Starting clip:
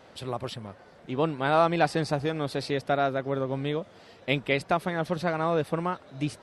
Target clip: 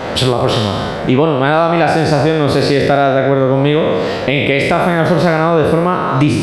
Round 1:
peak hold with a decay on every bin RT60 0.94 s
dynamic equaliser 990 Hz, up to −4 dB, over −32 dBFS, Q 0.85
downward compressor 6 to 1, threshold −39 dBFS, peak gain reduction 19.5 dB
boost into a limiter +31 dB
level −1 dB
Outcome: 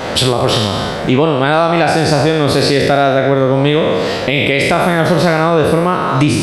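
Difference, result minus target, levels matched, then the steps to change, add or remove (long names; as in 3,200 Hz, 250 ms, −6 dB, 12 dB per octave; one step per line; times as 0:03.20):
8,000 Hz band +6.0 dB
add after downward compressor: high-shelf EQ 3,900 Hz −8.5 dB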